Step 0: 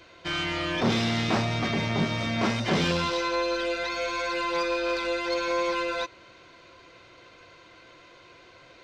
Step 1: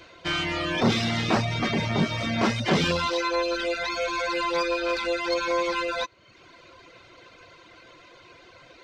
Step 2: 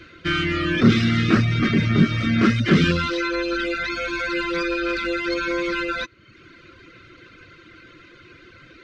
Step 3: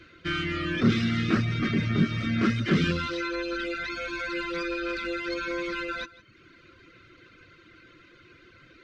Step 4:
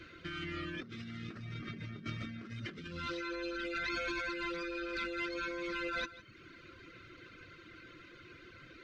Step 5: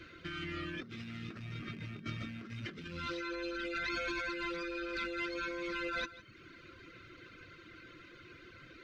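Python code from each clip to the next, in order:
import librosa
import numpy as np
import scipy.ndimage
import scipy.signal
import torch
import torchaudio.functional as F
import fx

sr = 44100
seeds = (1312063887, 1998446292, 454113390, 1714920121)

y1 = fx.dereverb_blind(x, sr, rt60_s=0.78)
y1 = y1 * 10.0 ** (3.5 / 20.0)
y2 = fx.curve_eq(y1, sr, hz=(330.0, 890.0, 1300.0, 8800.0), db=(0, -25, -1, -14))
y2 = y2 * 10.0 ** (8.5 / 20.0)
y3 = y2 + 10.0 ** (-19.0 / 20.0) * np.pad(y2, (int(161 * sr / 1000.0), 0))[:len(y2)]
y3 = y3 * 10.0 ** (-7.0 / 20.0)
y4 = fx.over_compress(y3, sr, threshold_db=-35.0, ratio=-1.0)
y4 = y4 * 10.0 ** (-6.5 / 20.0)
y5 = fx.rattle_buzz(y4, sr, strikes_db=-47.0, level_db=-44.0)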